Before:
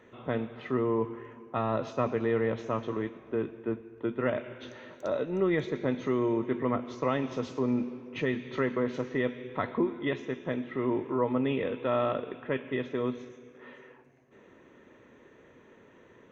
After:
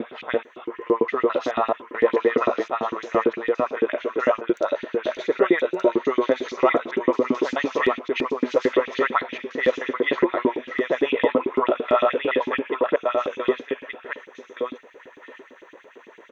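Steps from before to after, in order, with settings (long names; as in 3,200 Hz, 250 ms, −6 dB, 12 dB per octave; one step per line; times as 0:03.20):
slices reordered back to front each 216 ms, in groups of 3
single-tap delay 1,171 ms −4 dB
auto-filter high-pass saw up 8.9 Hz 260–3,600 Hz
level +7 dB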